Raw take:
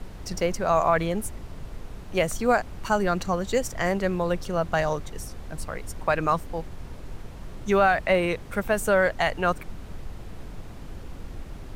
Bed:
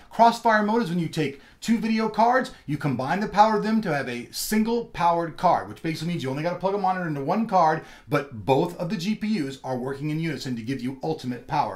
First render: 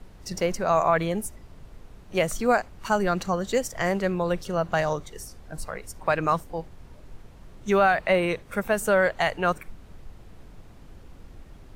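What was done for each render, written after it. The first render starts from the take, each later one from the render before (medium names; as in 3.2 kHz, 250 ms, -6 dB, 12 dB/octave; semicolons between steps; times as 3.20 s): noise print and reduce 8 dB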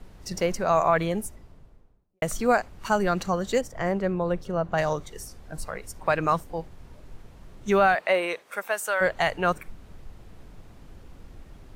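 1.07–2.22 s: studio fade out; 3.61–4.78 s: treble shelf 2.1 kHz -11.5 dB; 7.94–9.00 s: high-pass 330 Hz -> 950 Hz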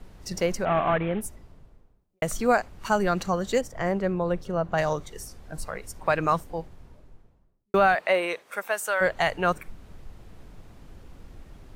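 0.65–1.21 s: CVSD coder 16 kbps; 6.43–7.74 s: studio fade out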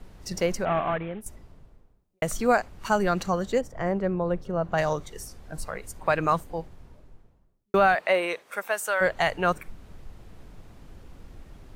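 0.58–1.26 s: fade out, to -11 dB; 3.45–4.62 s: treble shelf 2.1 kHz -7.5 dB; 5.74–6.51 s: band-stop 5.5 kHz, Q 11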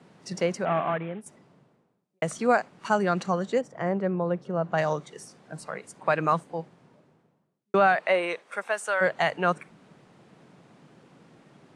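elliptic band-pass 150–9500 Hz, stop band 40 dB; treble shelf 5.1 kHz -5.5 dB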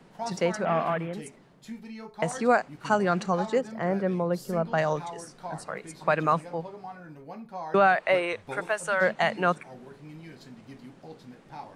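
add bed -18 dB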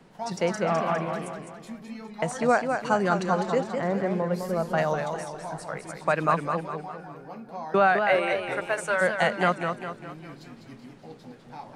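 modulated delay 204 ms, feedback 47%, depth 123 cents, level -6 dB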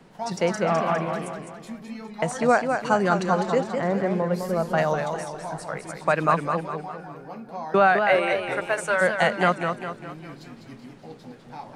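trim +2.5 dB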